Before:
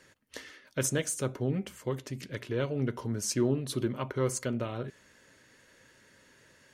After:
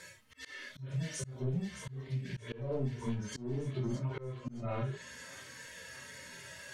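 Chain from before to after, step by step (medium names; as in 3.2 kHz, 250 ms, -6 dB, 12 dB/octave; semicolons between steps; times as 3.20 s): harmonic-percussive separation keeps harmonic; in parallel at -3 dB: saturation -33.5 dBFS, distortion -7 dB; on the sum: low-pass that closes with the level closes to 1.2 kHz, closed at -26.5 dBFS; bass shelf 87 Hz +8.5 dB; reverberation, pre-delay 4 ms, DRR -2.5 dB; compression 5:1, threshold -31 dBFS, peak gain reduction 14 dB; tilt shelf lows -4.5 dB, about 880 Hz; feedback echo behind a high-pass 616 ms, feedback 65%, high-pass 1.6 kHz, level -10 dB; slow attack 200 ms; trim +2.5 dB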